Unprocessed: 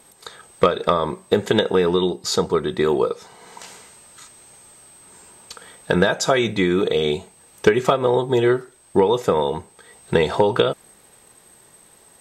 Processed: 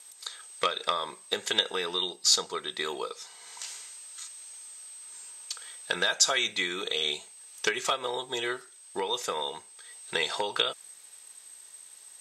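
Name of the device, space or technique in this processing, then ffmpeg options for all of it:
piezo pickup straight into a mixer: -af "lowpass=7000,aderivative,volume=2.24"

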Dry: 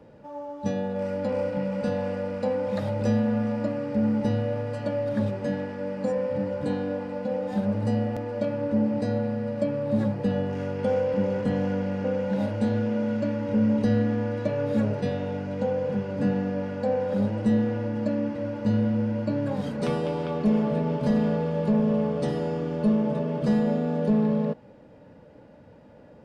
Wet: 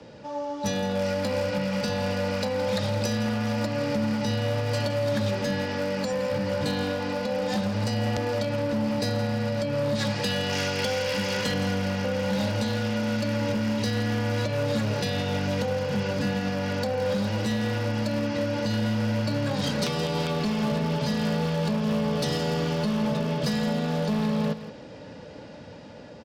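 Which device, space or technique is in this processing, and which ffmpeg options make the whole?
FM broadcast chain: -filter_complex "[0:a]lowpass=f=5200:w=0.5412,lowpass=f=5200:w=1.3066,asettb=1/sr,asplit=3[s0][s1][s2];[s0]atrim=end=9.954[s3];[s1]atrim=start=9.95:end=11.54,asetpts=PTS-STARTPTS,afade=t=in:d=0.004:c=qsin,afade=t=out:st=1.586:d=0.004:c=qsin,tiltshelf=f=970:g=-7[s4];[s2]atrim=start=11.536[s5];[s3][s4]acrossfade=d=0.004:c1=hsin:c2=qsin[s6];[s6][s5]acrossfade=d=0.004:c1=qsin:c2=hsin,highpass=f=51:w=0.5412,highpass=f=51:w=1.3066,dynaudnorm=f=380:g=5:m=1.41,acrossover=split=150|740[s7][s8][s9];[s7]acompressor=threshold=0.0282:ratio=4[s10];[s8]acompressor=threshold=0.0224:ratio=4[s11];[s9]acompressor=threshold=0.0141:ratio=4[s12];[s10][s11][s12]amix=inputs=3:normalize=0,aemphasis=mode=production:type=75fm,alimiter=limit=0.0708:level=0:latency=1:release=123,asoftclip=type=hard:threshold=0.0447,lowpass=f=15000:w=0.5412,lowpass=f=15000:w=1.3066,aemphasis=mode=production:type=75fm,aecho=1:1:167:0.224,volume=2"

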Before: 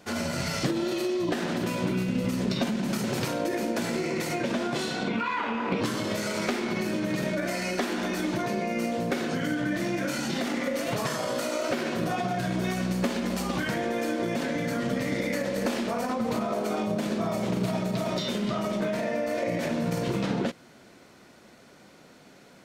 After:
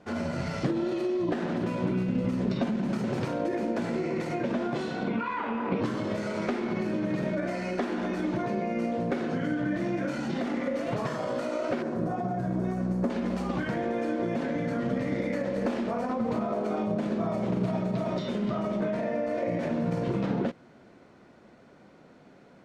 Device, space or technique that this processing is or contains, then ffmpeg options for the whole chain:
through cloth: -filter_complex "[0:a]asettb=1/sr,asplit=3[s0][s1][s2];[s0]atrim=end=11.824[s3];[s1]atrim=start=11.82:end=13.1,asetpts=PTS-STARTPTS,afade=t=in:d=0.004:c=qsin,afade=t=out:st=1.276:d=0.004:c=qsin,equalizer=f=3000:w=0.83:g=-13.5[s4];[s2]atrim=start=13.096[s5];[s3][s4]acrossfade=d=0.004:c1=hsin:c2=qsin[s6];[s6][s5]acrossfade=d=0.004:c1=qsin:c2=hsin,lowpass=9200,highshelf=f=2600:g=-15.5"

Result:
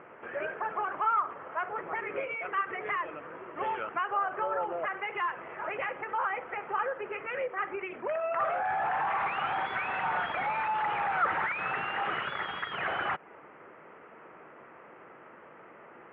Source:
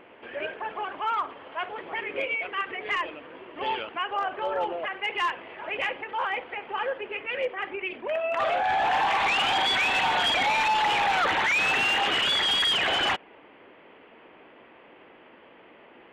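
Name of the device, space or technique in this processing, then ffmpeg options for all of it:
bass amplifier: -filter_complex "[0:a]acompressor=threshold=0.0355:ratio=6,highpass=67,equalizer=f=150:t=q:w=4:g=6,equalizer=f=270:t=q:w=4:g=-6,equalizer=f=1300:t=q:w=4:g=8,lowpass=f=2100:w=0.5412,lowpass=f=2100:w=1.3066,asettb=1/sr,asplit=3[s0][s1][s2];[s0]atrim=end=1.334[s3];[s1]atrim=start=1.33:end=2.07,asetpts=PTS-STARTPTS,afade=t=in:d=0.004:c=qsin,afade=t=out:st=0.736:d=0.004:c=qsin,equalizer=f=4100:w=1.5:g=-6[s4];[s2]atrim=start=2.066[s5];[s3][s4]acrossfade=d=0.004:c1=hsin:c2=qsin[s6];[s6][s5]acrossfade=d=0.004:c1=qsin:c2=hsin"

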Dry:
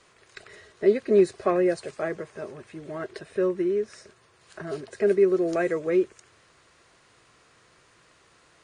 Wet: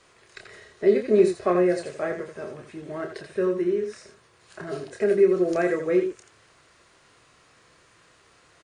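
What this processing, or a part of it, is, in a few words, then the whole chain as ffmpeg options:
slapback doubling: -filter_complex "[0:a]asplit=3[s0][s1][s2];[s1]adelay=28,volume=0.501[s3];[s2]adelay=84,volume=0.398[s4];[s0][s3][s4]amix=inputs=3:normalize=0"

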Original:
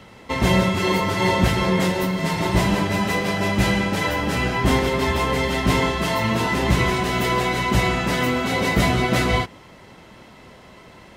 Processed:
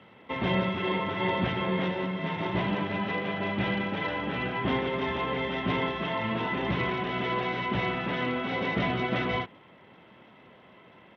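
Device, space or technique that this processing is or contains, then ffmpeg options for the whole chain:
Bluetooth headset: -af "highpass=130,aresample=8000,aresample=44100,volume=0.398" -ar 32000 -c:a sbc -b:a 64k

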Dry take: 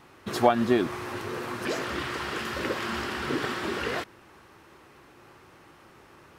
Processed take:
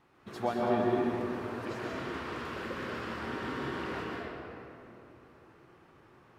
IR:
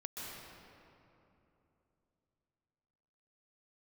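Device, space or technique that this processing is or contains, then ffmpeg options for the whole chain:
swimming-pool hall: -filter_complex "[1:a]atrim=start_sample=2205[s0];[0:a][s0]afir=irnorm=-1:irlink=0,highshelf=f=3800:g=-7.5,volume=0.501"

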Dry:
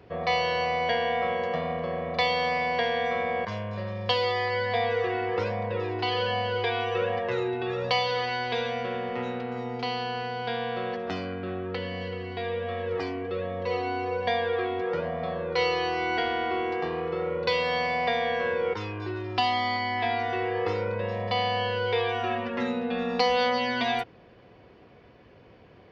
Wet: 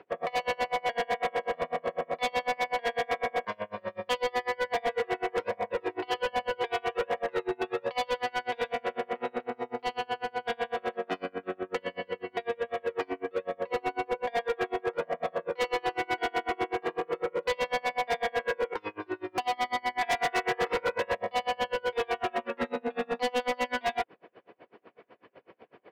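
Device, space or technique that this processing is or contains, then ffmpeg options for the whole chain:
helicopter radio: -filter_complex "[0:a]asettb=1/sr,asplit=3[s0][s1][s2];[s0]atrim=end=20.014[s3];[s1]atrim=start=20.01:end=21.15,asetpts=PTS-STARTPTS,afade=t=in:d=0.004:c=qsin,afade=t=out:st=1.136:d=0.004:c=qsin,equalizer=f=1900:w=0.34:g=9[s4];[s2]atrim=start=21.146[s5];[s3][s4]acrossfade=d=0.004:c1=hsin:c2=qsin[s6];[s6][s5]acrossfade=d=0.004:c1=qsin:c2=hsin,highpass=340,lowpass=2600,aeval=exprs='val(0)*pow(10,-34*(0.5-0.5*cos(2*PI*8*n/s))/20)':c=same,asoftclip=type=hard:threshold=0.0299,volume=2.24"

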